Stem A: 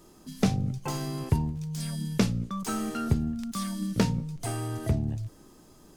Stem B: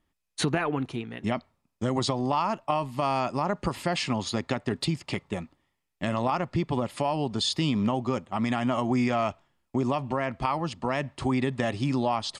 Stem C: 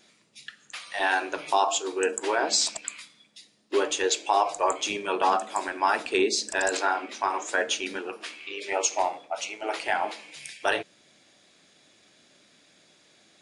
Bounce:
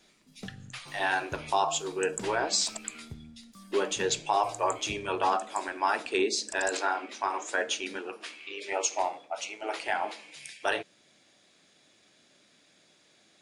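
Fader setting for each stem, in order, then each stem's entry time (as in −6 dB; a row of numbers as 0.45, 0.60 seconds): −19.0 dB, muted, −3.5 dB; 0.00 s, muted, 0.00 s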